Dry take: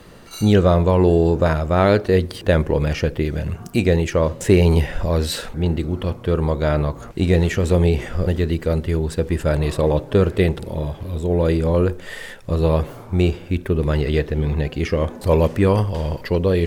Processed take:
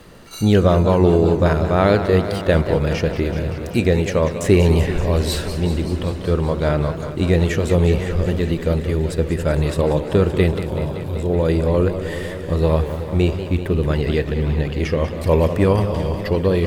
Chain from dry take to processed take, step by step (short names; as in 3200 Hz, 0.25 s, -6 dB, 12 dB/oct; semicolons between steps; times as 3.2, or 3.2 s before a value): crackle 78/s -43 dBFS; warbling echo 0.191 s, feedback 78%, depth 142 cents, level -11 dB